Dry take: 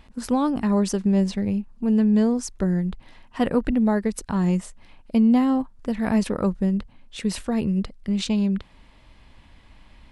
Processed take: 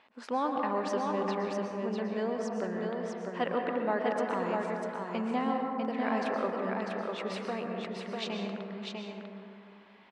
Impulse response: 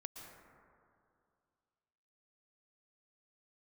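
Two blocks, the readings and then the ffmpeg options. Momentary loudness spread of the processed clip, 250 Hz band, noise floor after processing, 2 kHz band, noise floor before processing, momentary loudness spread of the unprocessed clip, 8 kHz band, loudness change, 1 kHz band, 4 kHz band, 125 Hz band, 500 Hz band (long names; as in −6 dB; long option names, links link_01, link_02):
9 LU, −14.5 dB, −54 dBFS, −0.5 dB, −53 dBFS, 9 LU, below −15 dB, −10.0 dB, 0.0 dB, −6.0 dB, −16.5 dB, −3.0 dB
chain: -filter_complex "[0:a]highpass=520,lowpass=3200,aecho=1:1:647:0.631[link_01];[1:a]atrim=start_sample=2205[link_02];[link_01][link_02]afir=irnorm=-1:irlink=0,volume=2.5dB"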